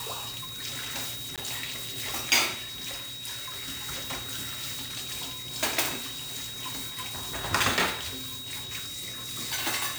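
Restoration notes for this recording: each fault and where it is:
whistle 3,800 Hz −38 dBFS
0:01.36–0:01.38: drop-out 17 ms

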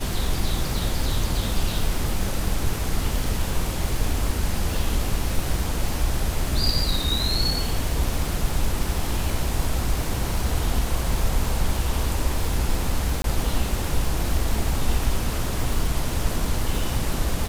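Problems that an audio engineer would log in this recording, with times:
surface crackle 360 per second −28 dBFS
0:13.22–0:13.24: drop-out 22 ms

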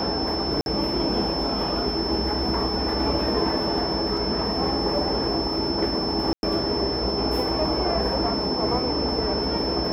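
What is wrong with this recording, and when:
whistle 5,300 Hz −28 dBFS
0:00.61–0:00.66: drop-out 51 ms
0:04.17: drop-out 2.9 ms
0:06.33–0:06.43: drop-out 101 ms

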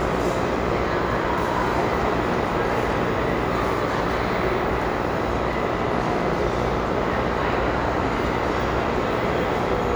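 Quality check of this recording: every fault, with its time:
mains buzz 60 Hz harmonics 22 −28 dBFS

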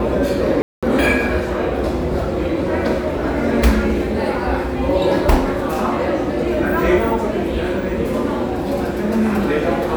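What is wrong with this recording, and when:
0:00.62–0:00.83: drop-out 206 ms

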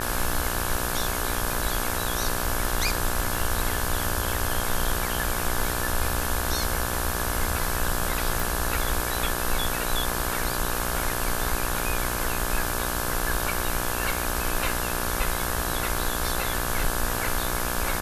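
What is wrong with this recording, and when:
mains buzz 60 Hz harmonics 29 −31 dBFS
0:08.40: click

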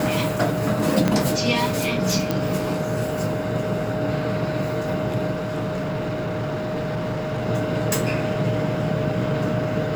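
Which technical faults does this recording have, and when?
whistle 620 Hz −27 dBFS
0:01.08: click −6 dBFS
0:02.31: click −8 dBFS
0:05.31–0:07.46: clipping −22.5 dBFS

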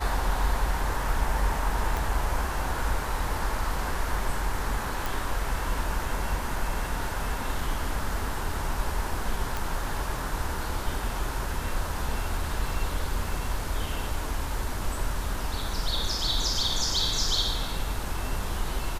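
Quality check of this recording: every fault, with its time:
0:01.97: click
0:05.06: click
0:09.57: click

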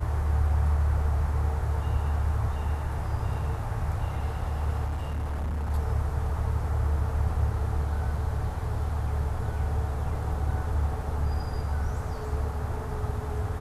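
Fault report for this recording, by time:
0:04.86–0:05.71: clipping −27 dBFS

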